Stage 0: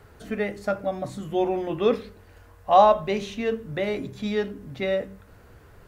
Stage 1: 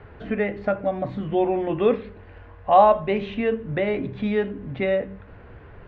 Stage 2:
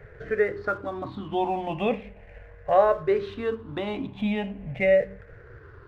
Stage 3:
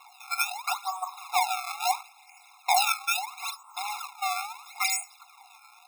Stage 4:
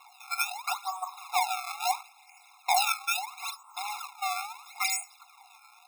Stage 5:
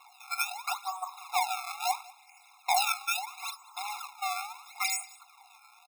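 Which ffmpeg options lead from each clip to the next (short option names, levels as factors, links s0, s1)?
-filter_complex "[0:a]lowpass=f=2900:w=0.5412,lowpass=f=2900:w=1.3066,equalizer=f=1300:t=o:w=0.23:g=-3.5,asplit=2[s0][s1];[s1]acompressor=threshold=0.0282:ratio=6,volume=1.06[s2];[s0][s2]amix=inputs=2:normalize=0"
-filter_complex "[0:a]afftfilt=real='re*pow(10,15/40*sin(2*PI*(0.53*log(max(b,1)*sr/1024/100)/log(2)-(-0.39)*(pts-256)/sr)))':imag='im*pow(10,15/40*sin(2*PI*(0.53*log(max(b,1)*sr/1024/100)/log(2)-(-0.39)*(pts-256)/sr)))':win_size=1024:overlap=0.75,equalizer=f=240:w=1.7:g=-5.5,asplit=2[s0][s1];[s1]aeval=exprs='sgn(val(0))*max(abs(val(0))-0.00841,0)':c=same,volume=0.422[s2];[s0][s2]amix=inputs=2:normalize=0,volume=0.501"
-af "acrusher=samples=26:mix=1:aa=0.000001:lfo=1:lforange=41.6:lforate=0.75,afftfilt=real='re*eq(mod(floor(b*sr/1024/700),2),1)':imag='im*eq(mod(floor(b*sr/1024/700),2),1)':win_size=1024:overlap=0.75,volume=2"
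-af "aeval=exprs='0.447*(cos(1*acos(clip(val(0)/0.447,-1,1)))-cos(1*PI/2))+0.00355*(cos(4*acos(clip(val(0)/0.447,-1,1)))-cos(4*PI/2))':c=same,volume=0.794"
-af "aecho=1:1:190:0.075,volume=0.841"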